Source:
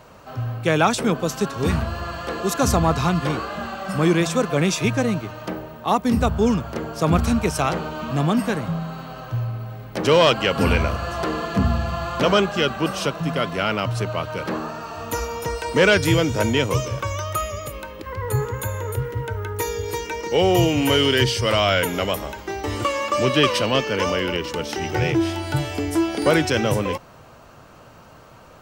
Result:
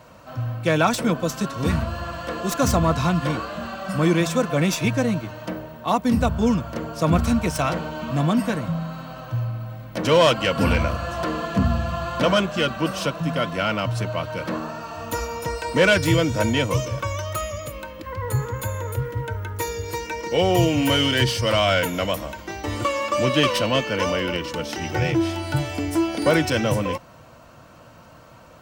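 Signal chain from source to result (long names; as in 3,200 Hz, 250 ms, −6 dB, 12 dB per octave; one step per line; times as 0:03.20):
stylus tracing distortion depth 0.031 ms
notch comb filter 410 Hz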